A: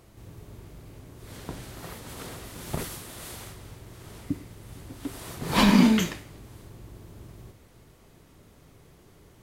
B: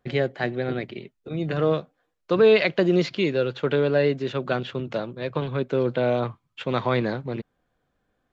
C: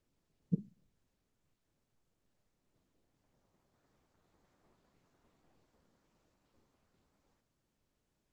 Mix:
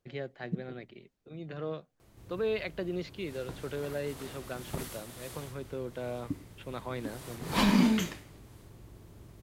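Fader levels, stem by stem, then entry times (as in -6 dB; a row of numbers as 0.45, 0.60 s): -6.0, -15.0, -1.5 dB; 2.00, 0.00, 0.00 s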